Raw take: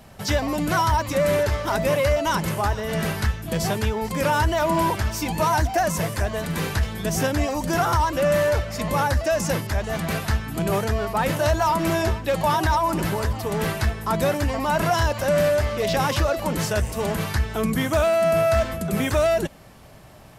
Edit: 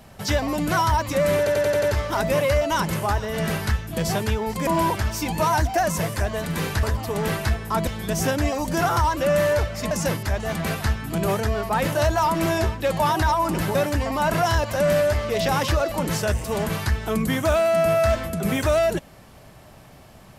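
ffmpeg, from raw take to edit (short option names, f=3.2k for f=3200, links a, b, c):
-filter_complex "[0:a]asplit=11[a][b][c][d][e][f][g][h][i][j][k];[a]atrim=end=1.472[l];[b]atrim=start=1.378:end=1.472[m];[c]atrim=start=1.378:end=1.472[n];[d]atrim=start=1.378:end=1.472[o];[e]atrim=start=1.378:end=1.472[p];[f]atrim=start=1.378:end=4.222[q];[g]atrim=start=4.668:end=6.832[r];[h]atrim=start=13.188:end=14.232[s];[i]atrim=start=6.828:end=8.872[t];[j]atrim=start=9.348:end=13.192[u];[k]atrim=start=14.228[v];[l][m]acrossfade=d=0.004:c1=hsin:c2=hsin[w];[w][n]acrossfade=d=0.004:c1=hsin:c2=hsin[x];[x][o]acrossfade=d=0.004:c1=hsin:c2=hsin[y];[y][p]acrossfade=d=0.004:c1=hsin:c2=hsin[z];[z][q]acrossfade=d=0.004:c1=hsin:c2=hsin[aa];[aa][r]acrossfade=d=0.004:c1=hsin:c2=hsin[ab];[ab][s]acrossfade=d=0.004:c1=hsin:c2=hsin[ac];[ac][t]acrossfade=d=0.004:c1=hsin:c2=hsin[ad];[ad][u]acrossfade=d=0.004:c1=hsin:c2=hsin[ae];[ae][v]acrossfade=d=0.004:c1=hsin:c2=hsin"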